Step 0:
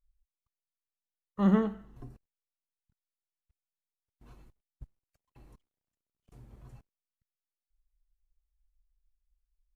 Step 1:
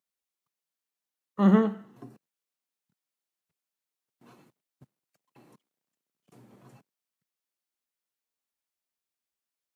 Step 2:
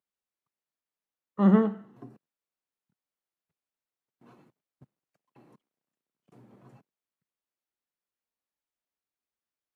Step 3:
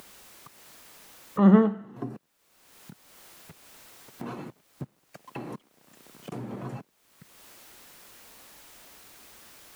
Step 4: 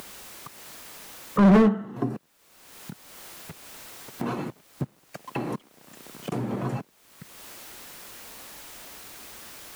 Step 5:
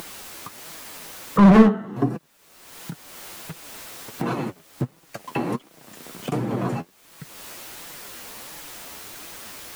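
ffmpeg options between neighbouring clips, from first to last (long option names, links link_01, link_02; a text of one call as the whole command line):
ffmpeg -i in.wav -af "highpass=frequency=160:width=0.5412,highpass=frequency=160:width=1.3066,volume=5dB" out.wav
ffmpeg -i in.wav -af "highshelf=frequency=3100:gain=-11.5" out.wav
ffmpeg -i in.wav -af "acompressor=mode=upward:threshold=-25dB:ratio=2.5,volume=3dB" out.wav
ffmpeg -i in.wav -af "asoftclip=type=hard:threshold=-20.5dB,volume=7.5dB" out.wav
ffmpeg -i in.wav -af "flanger=delay=5.9:depth=6.5:regen=35:speed=1.4:shape=sinusoidal,volume=8.5dB" out.wav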